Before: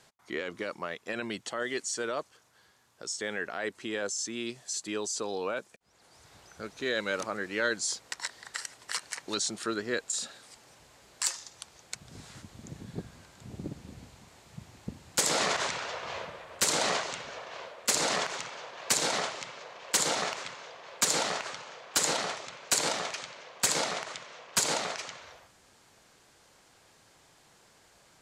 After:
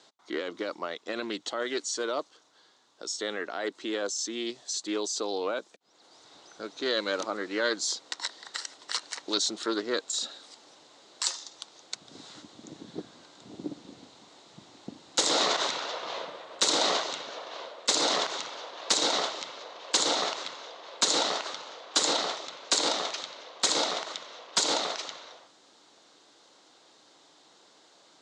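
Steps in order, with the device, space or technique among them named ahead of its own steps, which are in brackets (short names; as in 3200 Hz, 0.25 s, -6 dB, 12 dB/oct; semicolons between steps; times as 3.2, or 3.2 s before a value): full-range speaker at full volume (Doppler distortion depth 0.28 ms; speaker cabinet 290–7200 Hz, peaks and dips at 300 Hz +7 dB, 1700 Hz -5 dB, 2400 Hz -6 dB, 3800 Hz +7 dB); gain +2.5 dB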